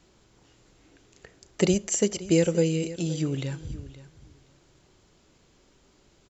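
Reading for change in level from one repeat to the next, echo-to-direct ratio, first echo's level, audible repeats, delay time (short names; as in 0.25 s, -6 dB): -16.0 dB, -16.5 dB, -16.5 dB, 2, 0.521 s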